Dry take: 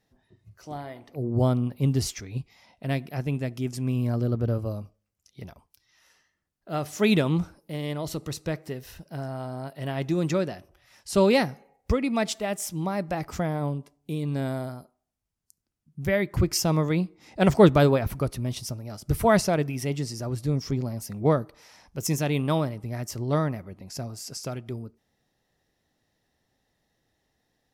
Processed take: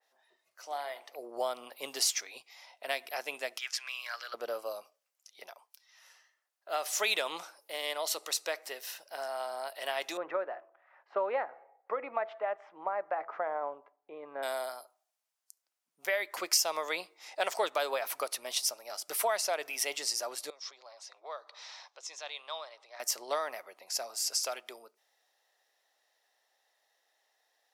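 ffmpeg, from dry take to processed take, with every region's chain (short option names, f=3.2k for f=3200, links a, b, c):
-filter_complex "[0:a]asettb=1/sr,asplit=3[a][b][c];[a]atrim=end=3.584[d];[b]atrim=start=3.58:end=4.34,asetpts=PTS-STARTPTS,afade=t=in:d=0.004:c=qsin,afade=t=out:st=0.756:d=0.004:c=qsin,highpass=f=1.6k:t=q:w=2.5,highshelf=f=6.9k:t=q:w=1.5:g=-7.5[e];[c]atrim=start=4.336[f];[d][e]acrossfade=d=0.004:c1=hsin:c2=qsin[g];[g][f]acrossfade=d=0.004:c1=qsin:c2=hsin,asettb=1/sr,asplit=3[h][i][j];[h]atrim=end=10.174[k];[i]atrim=start=10.17:end=14.43,asetpts=PTS-STARTPTS,afade=t=in:d=0.004:c=qsin,afade=t=out:st=4.256:d=0.004:c=qsin,lowpass=f=1.6k:w=0.5412,lowpass=f=1.6k:w=1.3066,bandreject=f=166.7:t=h:w=4,bandreject=f=333.4:t=h:w=4,bandreject=f=500.1:t=h:w=4,bandreject=f=666.8:t=h:w=4[l];[j]atrim=start=14.426[m];[k][l]acrossfade=d=0.004:c1=hsin:c2=qsin[n];[n][m]acrossfade=d=0.004:c1=qsin:c2=hsin,asettb=1/sr,asplit=3[o][p][q];[o]atrim=end=20.504[r];[p]atrim=start=20.5:end=23,asetpts=PTS-STARTPTS,afade=t=in:d=0.004:c=qsin,afade=t=out:st=2.496:d=0.004:c=qsin,acompressor=threshold=-48dB:ratio=2:attack=3.2:release=140:knee=1:detection=peak,highpass=f=390:w=0.5412,highpass=f=390:w=1.3066,equalizer=f=410:t=q:w=4:g=-5,equalizer=f=1.1k:t=q:w=4:g=4,equalizer=f=3.8k:t=q:w=4:g=9,lowpass=f=6.5k:w=0.5412,lowpass=f=6.5k:w=1.3066[s];[q]atrim=start=22.996[t];[r][s]acrossfade=d=0.004:c1=hsin:c2=qsin[u];[u][t]acrossfade=d=0.004:c1=qsin:c2=hsin,highpass=f=590:w=0.5412,highpass=f=590:w=1.3066,acompressor=threshold=-31dB:ratio=4,adynamicequalizer=threshold=0.00316:dfrequency=2400:dqfactor=0.7:tfrequency=2400:tqfactor=0.7:attack=5:release=100:ratio=0.375:range=2.5:mode=boostabove:tftype=highshelf,volume=2dB"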